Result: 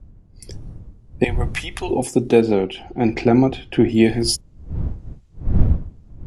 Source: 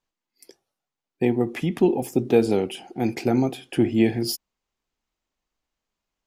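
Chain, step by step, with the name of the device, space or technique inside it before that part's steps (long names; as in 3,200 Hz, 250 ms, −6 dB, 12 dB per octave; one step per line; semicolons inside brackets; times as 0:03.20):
0:01.24–0:01.91: high-pass filter 970 Hz 12 dB per octave
0:02.41–0:03.89: low-pass filter 3,100 Hz 12 dB per octave
high-shelf EQ 4,200 Hz +5.5 dB
smartphone video outdoors (wind on the microphone 83 Hz; automatic gain control gain up to 12 dB; level −1 dB; AAC 96 kbit/s 24,000 Hz)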